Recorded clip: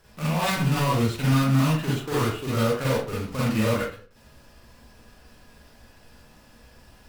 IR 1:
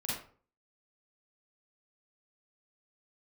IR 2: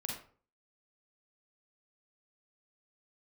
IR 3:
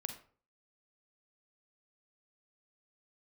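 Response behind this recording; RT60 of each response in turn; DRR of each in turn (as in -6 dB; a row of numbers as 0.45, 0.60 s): 1; 0.45, 0.45, 0.45 s; -7.5, -1.5, 6.0 dB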